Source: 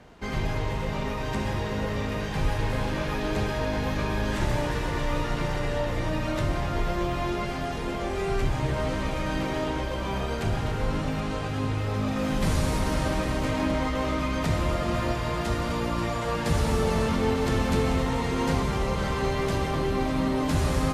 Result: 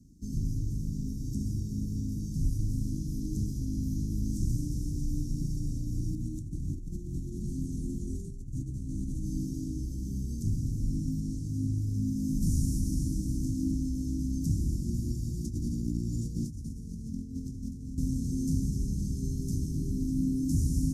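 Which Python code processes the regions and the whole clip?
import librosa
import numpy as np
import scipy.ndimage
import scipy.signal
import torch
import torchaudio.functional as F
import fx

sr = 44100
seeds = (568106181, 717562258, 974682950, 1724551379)

y = fx.chain(x, sr, fx.lowpass(hz=11000.0, slope=12),
    fx.over_compress(threshold_db=-29.0, ratio=-0.5),
    fx.peak_eq(hz=5200.0, db=-9.0, octaves=0.35), at=(6.15, 9.25))
y = fx.chain(y, sr, fx.high_shelf(hz=7300.0, db=-7.5),
    fx.over_compress(threshold_db=-29.0, ratio=-0.5), at=(15.44, 17.98))
y = scipy.signal.sosfilt(scipy.signal.cheby1(4, 1.0, [290.0, 5700.0], 'bandstop', fs=sr, output='sos'), y)
y = fx.peak_eq(y, sr, hz=1000.0, db=-9.0, octaves=0.47)
y = y * librosa.db_to_amplitude(-1.5)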